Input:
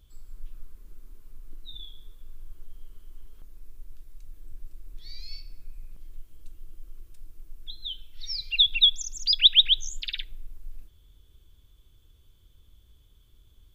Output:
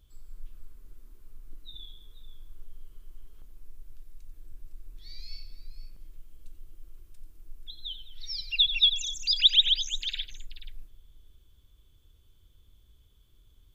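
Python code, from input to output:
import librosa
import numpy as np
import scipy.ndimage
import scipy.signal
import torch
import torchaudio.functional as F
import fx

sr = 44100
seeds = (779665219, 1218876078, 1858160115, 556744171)

y = fx.echo_multitap(x, sr, ms=(90, 208, 482), db=(-11.5, -17.0, -14.5))
y = F.gain(torch.from_numpy(y), -3.0).numpy()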